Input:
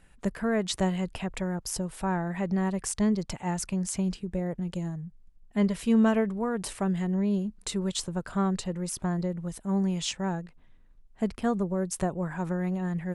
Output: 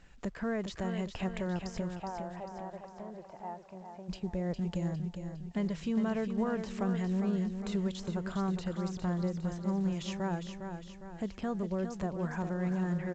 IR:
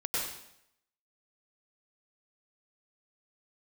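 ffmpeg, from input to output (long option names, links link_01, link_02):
-filter_complex "[0:a]deesser=1,alimiter=level_in=1dB:limit=-24dB:level=0:latency=1:release=299,volume=-1dB,asplit=3[link_01][link_02][link_03];[link_01]afade=type=out:start_time=1.94:duration=0.02[link_04];[link_02]bandpass=frequency=710:width_type=q:width=2.2:csg=0,afade=type=in:start_time=1.94:duration=0.02,afade=type=out:start_time=4.08:duration=0.02[link_05];[link_03]afade=type=in:start_time=4.08:duration=0.02[link_06];[link_04][link_05][link_06]amix=inputs=3:normalize=0,aecho=1:1:407|814|1221|1628|2035|2442:0.422|0.207|0.101|0.0496|0.0243|0.0119" -ar 16000 -c:a pcm_alaw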